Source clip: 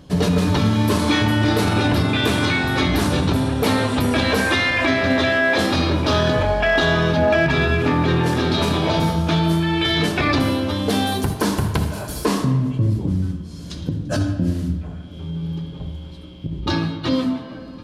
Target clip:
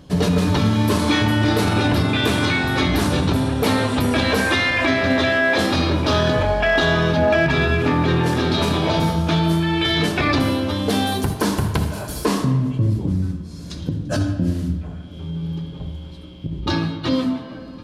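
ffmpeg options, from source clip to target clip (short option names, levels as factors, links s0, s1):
-filter_complex "[0:a]asettb=1/sr,asplit=3[s0][s1][s2];[s0]atrim=end=13.124[s3];[s1]atrim=start=13.12:end=13.8,asetpts=PTS-STARTPTS,afade=t=in:d=0.004:c=qsin,afade=t=out:st=0.676:d=0.004:c=qsin,bandreject=f=3100:w=8.7[s4];[s2]atrim=start=13.796[s5];[s3][s4]acrossfade=d=0.004:c1=hsin:c2=qsin[s6];[s6][s5]acrossfade=d=0.004:c1=qsin:c2=hsin"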